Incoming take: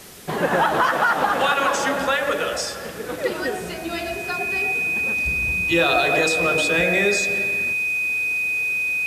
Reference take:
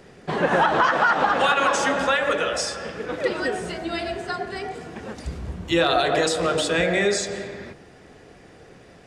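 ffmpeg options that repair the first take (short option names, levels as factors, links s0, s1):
-af "bandreject=f=2500:w=30,afwtdn=0.0079"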